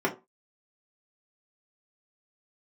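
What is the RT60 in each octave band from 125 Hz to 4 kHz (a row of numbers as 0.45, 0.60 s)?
0.25, 0.25, 0.30, 0.25, 0.20, 0.15 s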